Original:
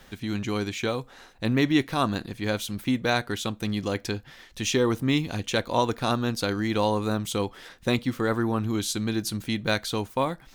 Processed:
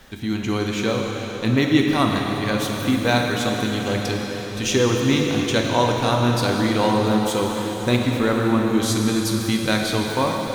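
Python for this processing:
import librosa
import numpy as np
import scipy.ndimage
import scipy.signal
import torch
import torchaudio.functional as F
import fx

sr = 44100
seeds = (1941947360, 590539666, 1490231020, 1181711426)

y = fx.rev_plate(x, sr, seeds[0], rt60_s=4.8, hf_ratio=0.95, predelay_ms=0, drr_db=0.0)
y = y * librosa.db_to_amplitude(3.0)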